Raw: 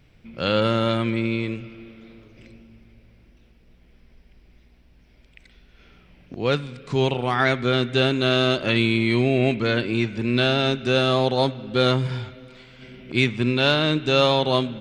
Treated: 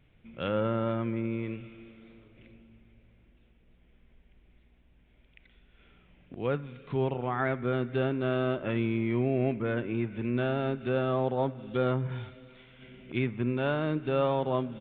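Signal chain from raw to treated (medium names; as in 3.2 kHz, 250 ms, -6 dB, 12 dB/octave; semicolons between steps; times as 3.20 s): low-pass that closes with the level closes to 1.5 kHz, closed at -19 dBFS; resampled via 8 kHz; trim -7.5 dB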